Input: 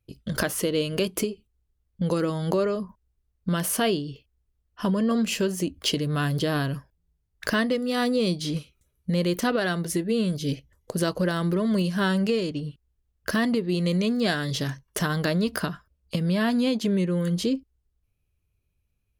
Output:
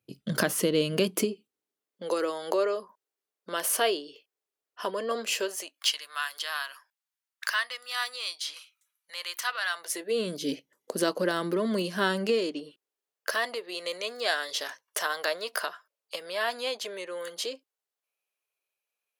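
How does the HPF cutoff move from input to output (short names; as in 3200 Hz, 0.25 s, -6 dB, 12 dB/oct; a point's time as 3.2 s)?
HPF 24 dB/oct
0.94 s 140 Hz
2.15 s 400 Hz
5.38 s 400 Hz
5.88 s 1000 Hz
9.68 s 1000 Hz
10.29 s 250 Hz
12.23 s 250 Hz
13.43 s 540 Hz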